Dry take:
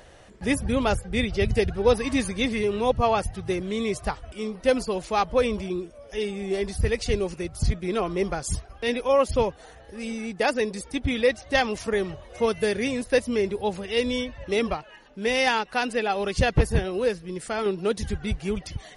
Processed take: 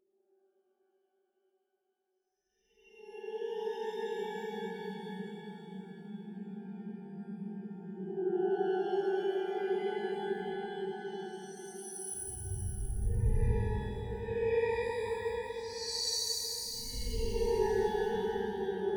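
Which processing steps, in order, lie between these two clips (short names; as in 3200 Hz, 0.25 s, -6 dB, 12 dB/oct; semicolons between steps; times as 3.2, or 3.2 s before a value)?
per-bin expansion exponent 3; de-hum 76.39 Hz, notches 5; Paulstretch 15×, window 0.05 s, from 5.96; on a send: tape echo 0.592 s, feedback 45%, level -5.5 dB, low-pass 4400 Hz; on the sum: shimmer reverb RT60 1.6 s, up +12 st, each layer -8 dB, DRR 0 dB; gain -1 dB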